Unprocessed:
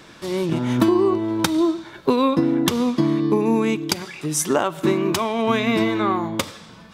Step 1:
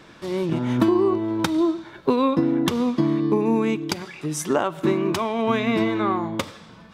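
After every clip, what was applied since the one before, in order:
high-shelf EQ 4,300 Hz −8 dB
level −1.5 dB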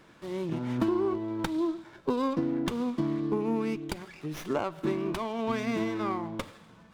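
windowed peak hold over 5 samples
level −8.5 dB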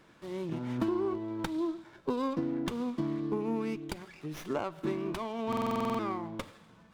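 buffer that repeats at 0:05.48, samples 2,048, times 10
level −3.5 dB

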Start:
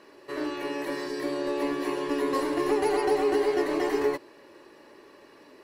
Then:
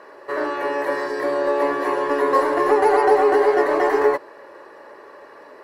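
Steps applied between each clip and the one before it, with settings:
flat-topped bell 910 Hz +12.5 dB 2.4 octaves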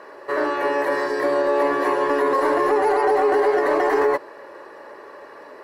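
brickwall limiter −12.5 dBFS, peak gain reduction 8 dB
level +2 dB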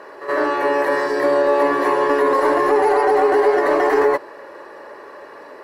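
backwards echo 77 ms −12 dB
level +2.5 dB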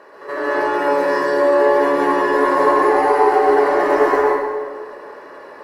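dense smooth reverb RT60 1.6 s, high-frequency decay 0.55×, pre-delay 120 ms, DRR −5.5 dB
level −5.5 dB

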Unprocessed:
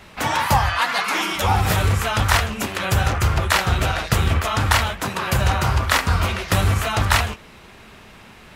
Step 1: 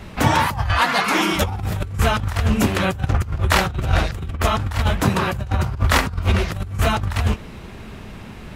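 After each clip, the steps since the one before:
low-shelf EQ 430 Hz +12 dB
compressor whose output falls as the input rises −14 dBFS, ratio −0.5
level −4 dB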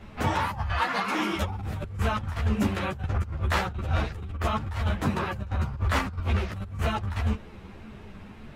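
high-shelf EQ 4,200 Hz −8.5 dB
string-ensemble chorus
level −5 dB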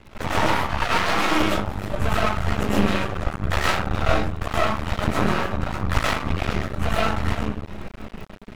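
comb and all-pass reverb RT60 0.59 s, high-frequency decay 0.4×, pre-delay 75 ms, DRR −8 dB
surface crackle 43 per second −38 dBFS
half-wave rectification
level +3 dB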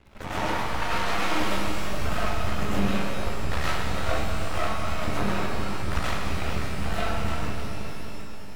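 reverb with rising layers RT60 3.1 s, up +12 semitones, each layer −8 dB, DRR 0.5 dB
level −8.5 dB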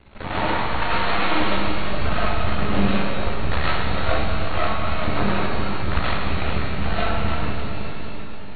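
linear-phase brick-wall low-pass 4,500 Hz
level +5 dB

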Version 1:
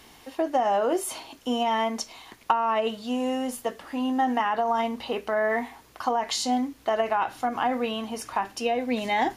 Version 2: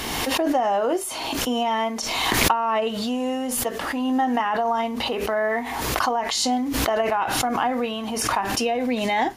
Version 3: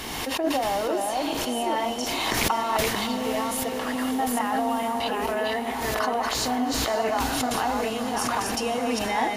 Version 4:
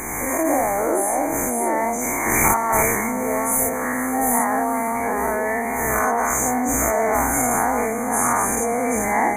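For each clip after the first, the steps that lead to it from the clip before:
background raised ahead of every attack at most 25 dB per second; level +1.5 dB
delay that plays each chunk backwards 439 ms, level −2.5 dB; feedback delay with all-pass diffusion 507 ms, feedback 66%, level −10.5 dB; level −5 dB
every bin's largest magnitude spread in time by 120 ms; linear-phase brick-wall band-stop 2,400–6,000 Hz; high-shelf EQ 3,800 Hz +6 dB

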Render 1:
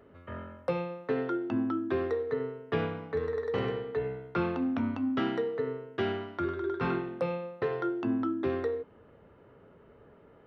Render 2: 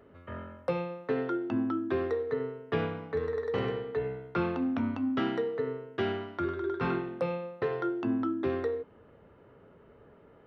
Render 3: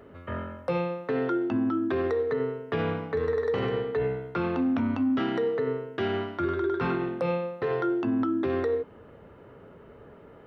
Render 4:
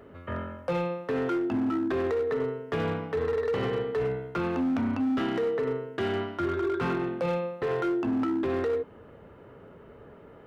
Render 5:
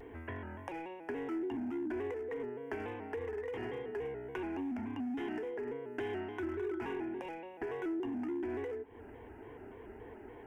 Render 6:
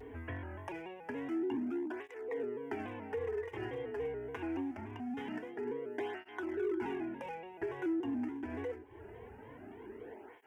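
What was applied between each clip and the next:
no processing that can be heard
brickwall limiter −26.5 dBFS, peak gain reduction 8 dB; level +7 dB
gain into a clipping stage and back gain 23.5 dB
downward compressor 6 to 1, threshold −38 dBFS, peak gain reduction 12 dB; phaser with its sweep stopped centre 830 Hz, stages 8; pitch modulation by a square or saw wave square 3.5 Hz, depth 100 cents; level +3 dB
through-zero flanger with one copy inverted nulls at 0.24 Hz, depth 5.9 ms; level +3 dB

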